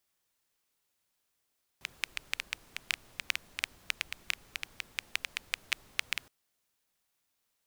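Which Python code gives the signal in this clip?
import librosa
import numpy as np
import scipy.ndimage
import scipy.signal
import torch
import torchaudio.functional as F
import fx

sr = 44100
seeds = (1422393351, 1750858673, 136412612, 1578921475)

y = fx.rain(sr, seeds[0], length_s=4.47, drops_per_s=7.2, hz=2400.0, bed_db=-19.0)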